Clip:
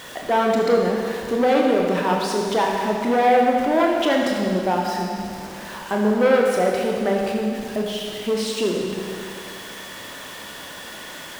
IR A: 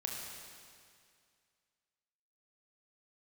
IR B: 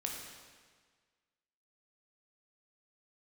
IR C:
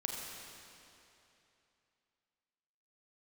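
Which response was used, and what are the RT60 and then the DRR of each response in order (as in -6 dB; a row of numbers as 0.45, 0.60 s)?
A; 2.2, 1.6, 2.9 s; -1.0, -0.5, -0.5 dB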